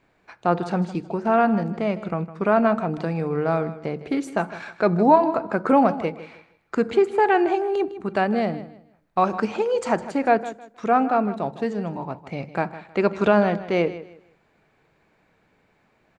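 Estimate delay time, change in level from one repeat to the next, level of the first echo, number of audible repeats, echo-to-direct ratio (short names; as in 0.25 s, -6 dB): 0.157 s, -11.5 dB, -15.0 dB, 2, -14.5 dB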